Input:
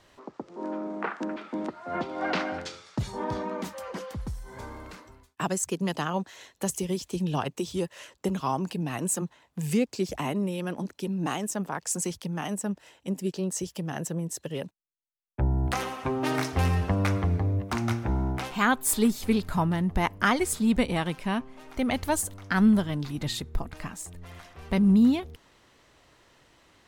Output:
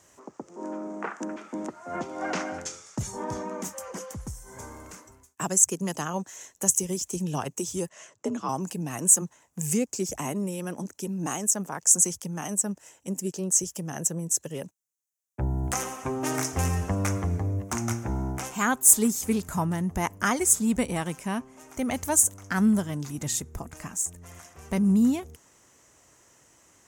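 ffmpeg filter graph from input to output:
-filter_complex "[0:a]asettb=1/sr,asplit=3[a][b][c];[a]atrim=end=7.894[d];[b]atrim=start=7.89:end=8.49,asetpts=PTS-STARTPTS,afade=t=in:d=0.004:c=qsin,afade=t=out:st=0.596:d=0.004:c=qsin,lowpass=7.6k,highshelf=f=5.8k:g=-10.5,afreqshift=51[e];[c]atrim=start=8.486[f];[d][e]acrossfade=d=0.004:c1=hsin:c2=qsin[g];[g][f]acrossfade=d=0.004:c1=qsin:c2=hsin,highpass=56,highshelf=f=5.2k:t=q:w=3:g=8.5,volume=-1.5dB"

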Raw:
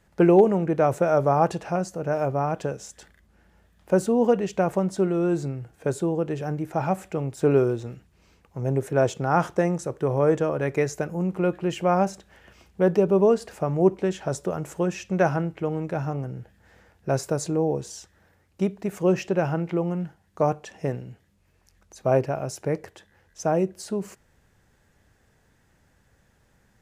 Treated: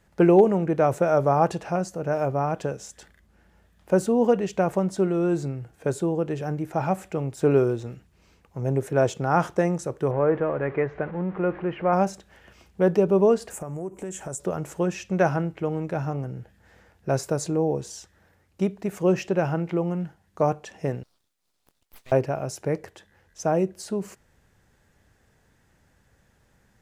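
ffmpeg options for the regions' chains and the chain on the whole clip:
-filter_complex "[0:a]asettb=1/sr,asplit=3[a][b][c];[a]atrim=end=10.114[d];[b]atrim=start=10.11:end=11.93,asetpts=PTS-STARTPTS,afade=t=in:d=0.004:c=qsin,afade=t=out:st=1.816:d=0.004:c=qsin,aeval=exprs='val(0)+0.5*0.0188*sgn(val(0))':c=same,lowpass=f=2.1k:w=0.5412,lowpass=f=2.1k:w=1.3066,lowshelf=f=320:g=-5[e];[c]atrim=start=11.926[f];[d][e]acrossfade=d=0.004:c1=hsin:c2=qsin[g];[g][f]acrossfade=d=0.004:c1=qsin:c2=hsin,asettb=1/sr,asplit=3[h][i][j];[h]atrim=end=13.504[k];[i]atrim=start=13.5:end=14.4,asetpts=PTS-STARTPTS,afade=t=in:d=0.004:c=qsin,afade=t=out:st=0.896:d=0.004:c=qsin,highshelf=f=6k:t=q:w=3:g=10,acompressor=threshold=-31dB:ratio=4:attack=3.2:release=140:knee=1:detection=peak[l];[j]atrim=start=14.396[m];[k][l]acrossfade=d=0.004:c1=hsin:c2=qsin[n];[n][m]acrossfade=d=0.004:c1=qsin:c2=hsin,asettb=1/sr,asplit=3[o][p][q];[o]atrim=end=21.034[r];[p]atrim=start=21.03:end=22.12,asetpts=PTS-STARTPTS,afade=t=in:d=0.004:c=qsin,afade=t=out:st=1.086:d=0.004:c=qsin,highpass=f=1.5k:w=0.5412,highpass=f=1.5k:w=1.3066,aeval=exprs='abs(val(0))':c=same[s];[q]atrim=start=22.116[t];[r][s]acrossfade=d=0.004:c1=hsin:c2=qsin[u];[u][t]acrossfade=d=0.004:c1=qsin:c2=hsin"

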